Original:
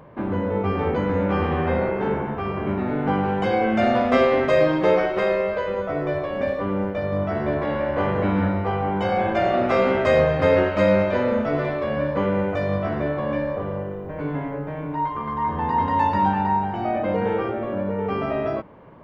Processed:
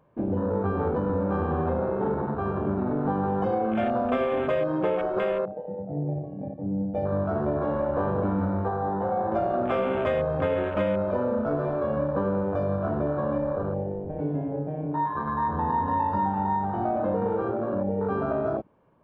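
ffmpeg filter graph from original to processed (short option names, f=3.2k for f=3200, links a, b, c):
-filter_complex "[0:a]asettb=1/sr,asplit=3[a][b][c];[a]atrim=end=5.454[d];[b]atrim=start=5.45:end=6.94,asetpts=PTS-STARTPTS,afade=t=in:d=0.004:c=qsin,afade=t=out:st=1.486:d=0.004:c=qsin,bandpass=f=120:t=q:w=0.89,aecho=1:1:6.4:0.71,atrim=end_sample=65709[e];[c]atrim=start=6.936[f];[d][e]acrossfade=d=0.004:c1=hsin:c2=qsin[g];[g][f]acrossfade=d=0.004:c1=qsin:c2=hsin,asettb=1/sr,asplit=3[h][i][j];[h]atrim=end=8.684[k];[i]atrim=start=8.68:end=9.32,asetpts=PTS-STARTPTS,afade=t=in:d=0.004:c=qsin,afade=t=out:st=0.636:d=0.004:c=qsin,lowpass=1.3k,lowshelf=f=410:g=-6[l];[j]atrim=start=9.316[m];[k][l]acrossfade=d=0.004:c1=hsin:c2=qsin[n];[n][m]acrossfade=d=0.004:c1=qsin:c2=hsin,afwtdn=0.0501,bandreject=f=2k:w=7.8,acompressor=threshold=-22dB:ratio=6"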